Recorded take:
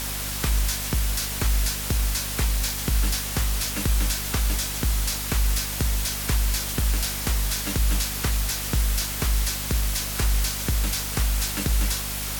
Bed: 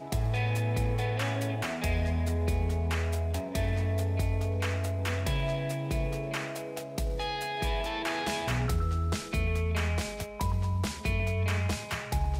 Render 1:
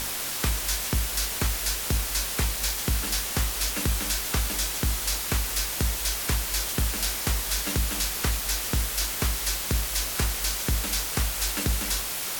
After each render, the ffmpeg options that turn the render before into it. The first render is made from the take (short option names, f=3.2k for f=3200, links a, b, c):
-af "bandreject=f=50:t=h:w=6,bandreject=f=100:t=h:w=6,bandreject=f=150:t=h:w=6,bandreject=f=200:t=h:w=6,bandreject=f=250:t=h:w=6,bandreject=f=300:t=h:w=6"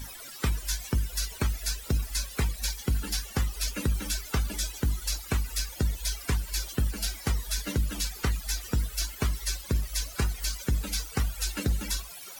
-af "afftdn=nr=19:nf=-31"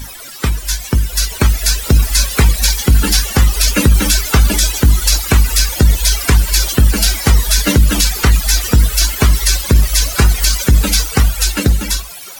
-af "dynaudnorm=f=430:g=7:m=9.5dB,alimiter=level_in=11.5dB:limit=-1dB:release=50:level=0:latency=1"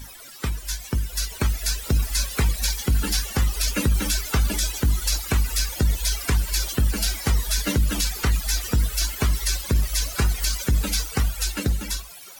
-af "volume=-11dB"